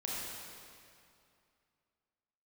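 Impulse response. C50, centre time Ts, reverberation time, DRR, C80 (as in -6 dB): -3.5 dB, 0.153 s, 2.5 s, -5.5 dB, -1.5 dB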